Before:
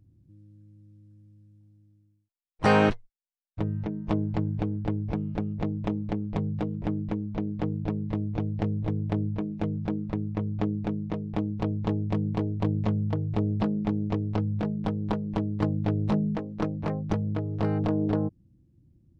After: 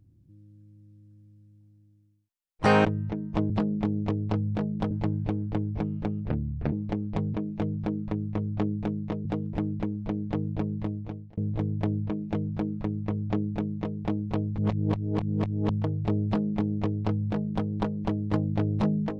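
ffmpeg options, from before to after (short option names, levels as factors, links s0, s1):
-filter_complex "[0:a]asplit=11[s0][s1][s2][s3][s4][s5][s6][s7][s8][s9][s10];[s0]atrim=end=2.852[s11];[s1]atrim=start=3.588:end=4.242[s12];[s2]atrim=start=13.538:end=14.952[s13];[s3]atrim=start=4.238:end=5.614[s14];[s4]atrim=start=5.61:end=5.92,asetpts=PTS-STARTPTS,asetrate=30870,aresample=44100[s15];[s5]atrim=start=5.916:end=6.542[s16];[s6]atrim=start=9.358:end=11.272[s17];[s7]atrim=start=6.538:end=8.66,asetpts=PTS-STARTPTS,afade=t=out:st=1.502:d=0.62[s18];[s8]atrim=start=8.66:end=11.872,asetpts=PTS-STARTPTS,afade=t=in:d=0.004:c=hsin[s19];[s9]atrim=start=11.868:end=12.982,asetpts=PTS-STARTPTS,areverse[s20];[s10]atrim=start=12.978[s21];[s11][s12]acrossfade=d=0.004:c1=hsin:c2=hsin[s22];[s22][s13]acrossfade=d=0.004:c1=hsin:c2=hsin[s23];[s23][s14]acrossfade=d=0.004:c1=hsin:c2=hsin[s24];[s24][s15]acrossfade=d=0.004:c1=hsin:c2=hsin[s25];[s25][s16]acrossfade=d=0.004:c1=hsin:c2=hsin[s26];[s26][s17]acrossfade=d=0.004:c1=hsin:c2=hsin[s27];[s18][s19]concat=n=2:v=0:a=1[s28];[s27][s28]acrossfade=d=0.004:c1=hsin:c2=hsin[s29];[s29][s20]acrossfade=d=0.004:c1=hsin:c2=hsin[s30];[s30][s21]acrossfade=d=0.004:c1=hsin:c2=hsin"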